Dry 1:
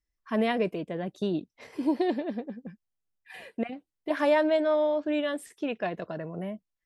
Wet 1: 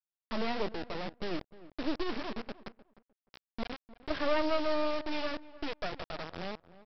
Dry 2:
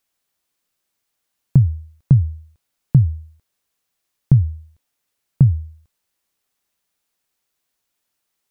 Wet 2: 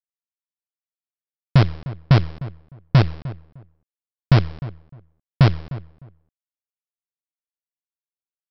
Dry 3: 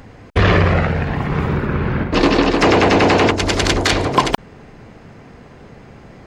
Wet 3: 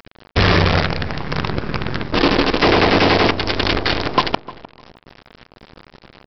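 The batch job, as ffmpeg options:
-filter_complex "[0:a]aresample=11025,acrusher=bits=3:dc=4:mix=0:aa=0.000001,aresample=44100,asplit=2[a][b];[b]adelay=304,lowpass=f=1.4k:p=1,volume=-16.5dB,asplit=2[c][d];[d]adelay=304,lowpass=f=1.4k:p=1,volume=0.2[e];[a][c][e]amix=inputs=3:normalize=0,volume=-2dB"

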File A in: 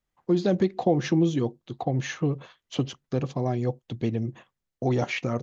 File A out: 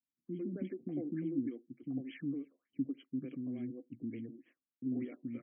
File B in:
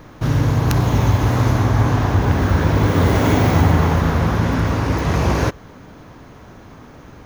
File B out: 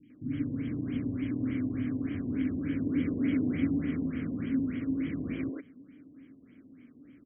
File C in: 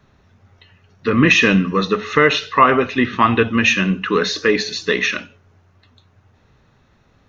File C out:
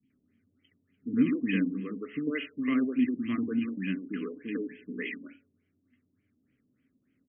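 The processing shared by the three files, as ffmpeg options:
-filter_complex "[0:a]asplit=3[a][b][c];[a]bandpass=f=270:t=q:w=8,volume=0dB[d];[b]bandpass=f=2.29k:t=q:w=8,volume=-6dB[e];[c]bandpass=f=3.01k:t=q:w=8,volume=-9dB[f];[d][e][f]amix=inputs=3:normalize=0,acrossover=split=320|2600[g][h][i];[i]adelay=30[j];[h]adelay=100[k];[g][k][j]amix=inputs=3:normalize=0,afftfilt=real='re*lt(b*sr/1024,990*pow(3400/990,0.5+0.5*sin(2*PI*3.4*pts/sr)))':imag='im*lt(b*sr/1024,990*pow(3400/990,0.5+0.5*sin(2*PI*3.4*pts/sr)))':win_size=1024:overlap=0.75"

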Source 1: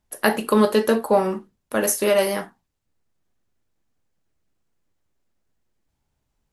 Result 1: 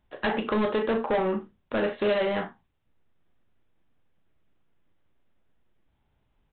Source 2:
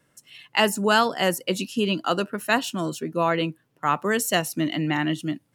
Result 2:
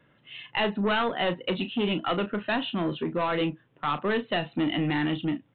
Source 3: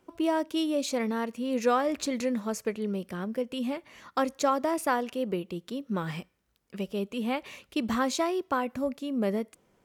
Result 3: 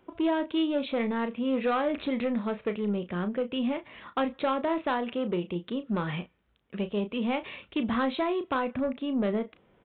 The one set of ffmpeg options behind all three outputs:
-filter_complex "[0:a]acompressor=threshold=-27dB:ratio=1.5,aresample=8000,asoftclip=type=tanh:threshold=-24.5dB,aresample=44100,asplit=2[a][b];[b]adelay=34,volume=-10.5dB[c];[a][c]amix=inputs=2:normalize=0,volume=3.5dB"

